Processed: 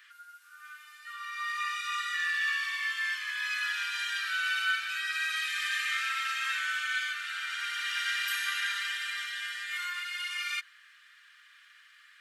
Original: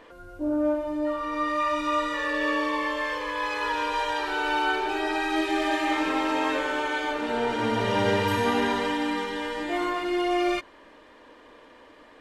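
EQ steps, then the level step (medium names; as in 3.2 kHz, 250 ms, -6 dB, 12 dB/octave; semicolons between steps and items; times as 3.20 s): steep high-pass 1.3 kHz 72 dB/octave; treble shelf 10 kHz +9 dB; 0.0 dB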